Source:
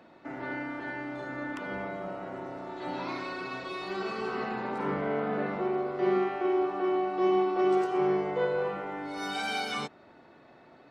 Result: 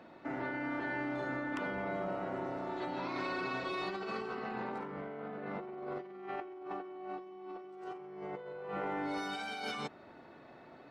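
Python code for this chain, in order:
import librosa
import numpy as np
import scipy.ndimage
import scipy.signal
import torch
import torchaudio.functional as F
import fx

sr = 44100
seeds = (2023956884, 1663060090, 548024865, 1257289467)

y = fx.high_shelf(x, sr, hz=5300.0, db=-5.0)
y = fx.over_compress(y, sr, threshold_db=-37.0, ratio=-1.0)
y = y * 10.0 ** (-4.0 / 20.0)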